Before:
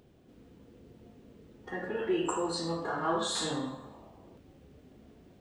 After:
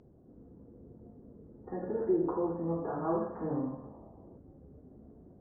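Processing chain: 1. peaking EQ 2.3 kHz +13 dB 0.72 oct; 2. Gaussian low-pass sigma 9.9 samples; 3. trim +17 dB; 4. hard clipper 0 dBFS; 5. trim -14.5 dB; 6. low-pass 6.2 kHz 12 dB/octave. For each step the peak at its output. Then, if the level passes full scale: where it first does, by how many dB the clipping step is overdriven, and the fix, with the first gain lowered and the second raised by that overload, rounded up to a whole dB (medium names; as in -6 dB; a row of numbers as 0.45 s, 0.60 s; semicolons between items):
-17.0 dBFS, -22.0 dBFS, -5.0 dBFS, -5.0 dBFS, -19.5 dBFS, -19.5 dBFS; nothing clips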